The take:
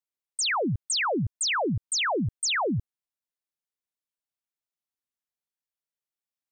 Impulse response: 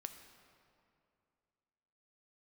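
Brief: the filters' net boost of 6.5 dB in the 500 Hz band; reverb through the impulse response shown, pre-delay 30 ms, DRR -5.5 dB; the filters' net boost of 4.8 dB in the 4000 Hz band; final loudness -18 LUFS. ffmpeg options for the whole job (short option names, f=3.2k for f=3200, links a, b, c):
-filter_complex "[0:a]equalizer=f=500:t=o:g=8,equalizer=f=4k:t=o:g=6,asplit=2[a][b];[1:a]atrim=start_sample=2205,adelay=30[c];[b][c]afir=irnorm=-1:irlink=0,volume=9.5dB[d];[a][d]amix=inputs=2:normalize=0,volume=-1.5dB"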